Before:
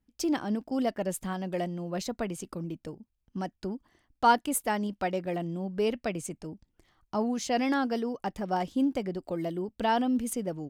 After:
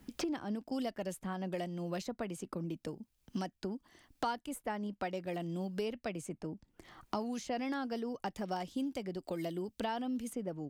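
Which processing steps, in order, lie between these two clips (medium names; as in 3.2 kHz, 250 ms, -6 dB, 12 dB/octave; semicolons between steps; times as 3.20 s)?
three bands compressed up and down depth 100%; trim -8.5 dB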